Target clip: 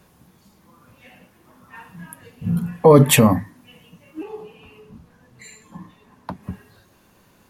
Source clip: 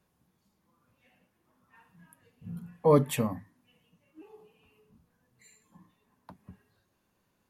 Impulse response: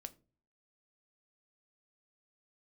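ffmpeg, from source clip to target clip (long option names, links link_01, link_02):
-filter_complex "[0:a]asettb=1/sr,asplit=3[link_01][link_02][link_03];[link_01]atrim=end=4.234[link_04];[link_02]atrim=start=4.23:end=6.43,asetpts=PTS-STARTPTS,afade=type=in:duration=0.004:curve=qsin,afade=type=out:start_time=2.196:duration=0.004:curve=qsin,highshelf=frequency=8800:gain=-10.5[link_05];[link_03]atrim=start=6.426[link_06];[link_04][link_05]acrossfade=duration=0.004:curve1=hsin:curve2=qsin[link_07];[link_07][link_06]acrossfade=duration=0.004:curve1=qsin:curve2=hsin,alimiter=level_in=20dB:limit=-1dB:release=50:level=0:latency=1,volume=-1dB"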